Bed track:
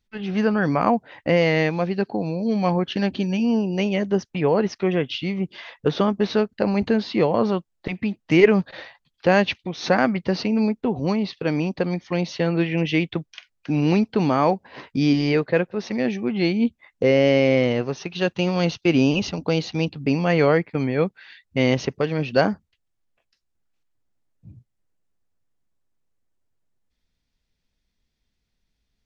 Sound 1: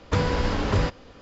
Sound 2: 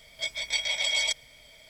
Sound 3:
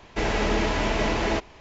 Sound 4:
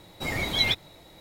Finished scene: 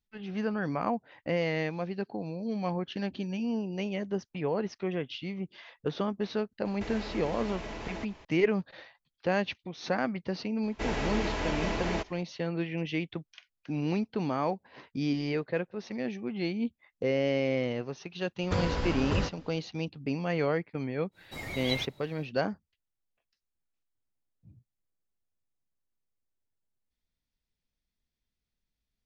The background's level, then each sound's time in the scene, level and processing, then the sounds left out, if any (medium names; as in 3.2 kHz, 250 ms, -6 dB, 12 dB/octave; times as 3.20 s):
bed track -11 dB
6.65 s: add 3 -4.5 dB + compression 3:1, threshold -35 dBFS
10.63 s: add 3 -7.5 dB
18.39 s: add 1 -7 dB
21.11 s: add 4 -10 dB, fades 0.10 s
not used: 2